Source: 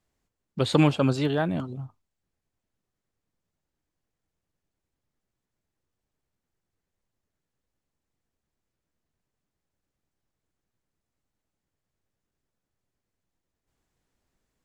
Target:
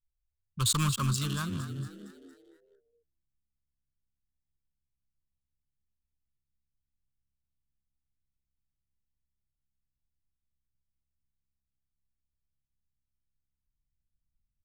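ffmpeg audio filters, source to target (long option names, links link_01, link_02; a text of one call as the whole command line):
ffmpeg -i in.wav -filter_complex "[0:a]acrossover=split=460[link_01][link_02];[link_02]aeval=exprs='sgn(val(0))*max(abs(val(0))-0.00501,0)':channel_layout=same[link_03];[link_01][link_03]amix=inputs=2:normalize=0,anlmdn=0.631,asoftclip=type=tanh:threshold=-16dB,firequalizer=gain_entry='entry(110,0);entry(230,-17);entry(760,-29);entry(1100,3);entry(1900,-13);entry(2700,-4);entry(7600,14)':delay=0.05:min_phase=1,asplit=6[link_04][link_05][link_06][link_07][link_08][link_09];[link_05]adelay=230,afreqshift=67,volume=-12.5dB[link_10];[link_06]adelay=460,afreqshift=134,volume=-18.5dB[link_11];[link_07]adelay=690,afreqshift=201,volume=-24.5dB[link_12];[link_08]adelay=920,afreqshift=268,volume=-30.6dB[link_13];[link_09]adelay=1150,afreqshift=335,volume=-36.6dB[link_14];[link_04][link_10][link_11][link_12][link_13][link_14]amix=inputs=6:normalize=0,volume=3dB" out.wav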